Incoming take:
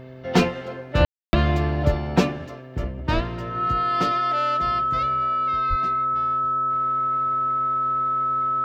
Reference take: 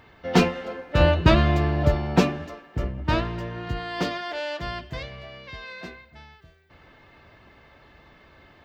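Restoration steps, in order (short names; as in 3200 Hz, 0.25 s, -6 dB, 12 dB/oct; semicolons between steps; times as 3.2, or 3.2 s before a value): de-hum 129.3 Hz, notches 5; notch 1300 Hz, Q 30; 3.14–3.26 HPF 140 Hz 24 dB/oct; 5.69–5.81 HPF 140 Hz 24 dB/oct; room tone fill 1.05–1.33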